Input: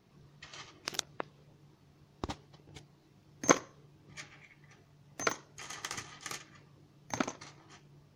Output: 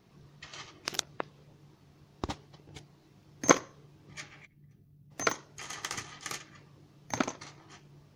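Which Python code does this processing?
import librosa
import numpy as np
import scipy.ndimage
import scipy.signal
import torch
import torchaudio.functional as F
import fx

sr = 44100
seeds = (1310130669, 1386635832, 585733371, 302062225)

y = fx.curve_eq(x, sr, hz=(210.0, 870.0, 7000.0, 13000.0), db=(0, -22, -18, 0), at=(4.45, 5.1), fade=0.02)
y = y * 10.0 ** (3.0 / 20.0)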